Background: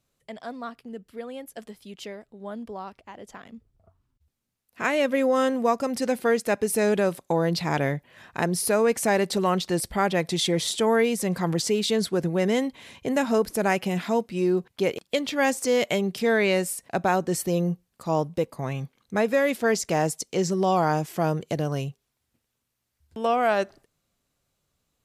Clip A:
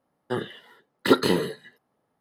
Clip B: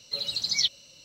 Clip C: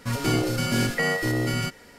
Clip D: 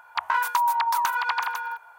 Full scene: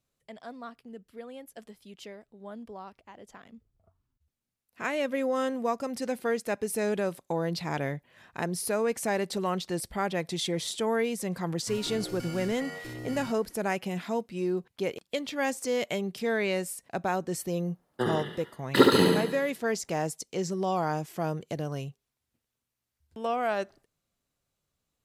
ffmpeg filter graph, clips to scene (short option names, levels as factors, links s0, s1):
-filter_complex "[0:a]volume=0.473[s0];[3:a]alimiter=limit=0.119:level=0:latency=1:release=71[s1];[1:a]aecho=1:1:69|138|207|276|345|414|483:0.708|0.375|0.199|0.105|0.0559|0.0296|0.0157[s2];[s1]atrim=end=1.98,asetpts=PTS-STARTPTS,volume=0.224,afade=t=in:d=0.004:c=hsin,afade=t=out:st=1.976:d=0.004:c=hsin,adelay=512442S[s3];[s2]atrim=end=2.2,asetpts=PTS-STARTPTS,volume=0.891,afade=t=in:d=0.004:c=hsin,afade=t=out:st=2.196:d=0.004:c=hsin,adelay=17690[s4];[s0][s3][s4]amix=inputs=3:normalize=0"